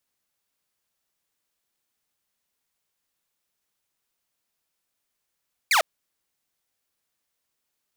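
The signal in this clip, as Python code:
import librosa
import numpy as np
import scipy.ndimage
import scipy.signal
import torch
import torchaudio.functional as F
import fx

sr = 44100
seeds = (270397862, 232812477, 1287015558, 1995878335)

y = fx.laser_zap(sr, level_db=-14, start_hz=2500.0, end_hz=570.0, length_s=0.1, wave='saw')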